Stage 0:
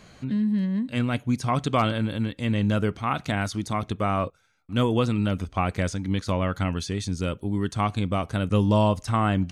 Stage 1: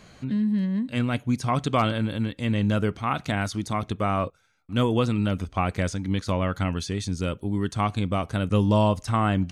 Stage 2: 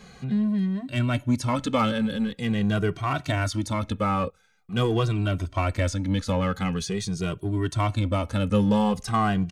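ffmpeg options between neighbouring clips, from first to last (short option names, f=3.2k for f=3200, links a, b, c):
-af anull
-filter_complex "[0:a]asplit=2[a][b];[b]asoftclip=type=hard:threshold=-28dB,volume=-5.5dB[c];[a][c]amix=inputs=2:normalize=0,asplit=2[d][e];[e]adelay=2,afreqshift=-0.45[f];[d][f]amix=inputs=2:normalize=1,volume=1.5dB"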